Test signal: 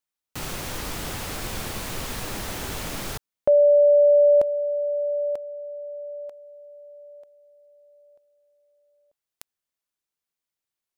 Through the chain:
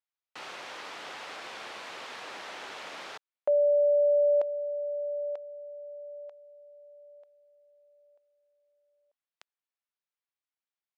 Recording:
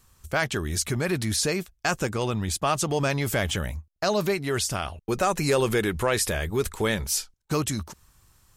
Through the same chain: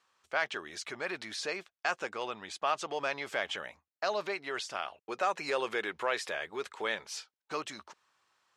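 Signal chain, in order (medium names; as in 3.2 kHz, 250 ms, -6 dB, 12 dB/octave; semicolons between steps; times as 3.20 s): band-pass 590–3700 Hz; trim -4.5 dB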